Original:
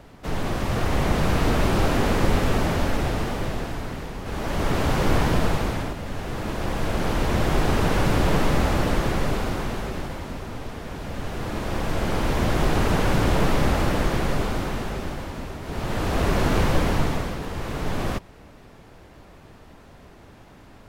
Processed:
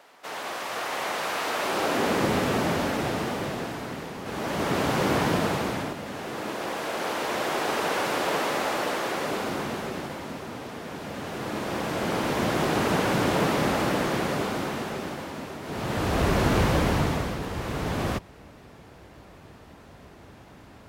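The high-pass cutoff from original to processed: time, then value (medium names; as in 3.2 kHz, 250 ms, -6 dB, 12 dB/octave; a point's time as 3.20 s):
1.53 s 670 Hz
2.29 s 160 Hz
5.91 s 160 Hz
6.91 s 430 Hz
9.08 s 430 Hz
9.63 s 170 Hz
15.61 s 170 Hz
16.19 s 55 Hz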